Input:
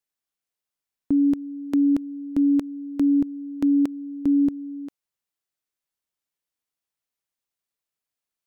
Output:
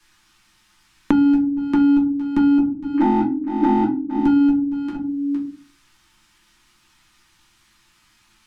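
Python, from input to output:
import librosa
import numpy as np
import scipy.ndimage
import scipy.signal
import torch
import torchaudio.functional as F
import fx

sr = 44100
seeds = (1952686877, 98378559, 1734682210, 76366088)

y = fx.sine_speech(x, sr, at=(2.58, 4.16))
y = fx.band_shelf(y, sr, hz=530.0, db=-15.0, octaves=1.1)
y = 10.0 ** (-17.0 / 20.0) * (np.abs((y / 10.0 ** (-17.0 / 20.0) + 3.0) % 4.0 - 2.0) - 1.0)
y = fx.air_absorb(y, sr, metres=63.0)
y = y + 10.0 ** (-17.0 / 20.0) * np.pad(y, (int(461 * sr / 1000.0), 0))[:len(y)]
y = fx.room_shoebox(y, sr, seeds[0], volume_m3=120.0, walls='furnished', distance_m=2.7)
y = fx.band_squash(y, sr, depth_pct=100)
y = y * 10.0 ** (-1.0 / 20.0)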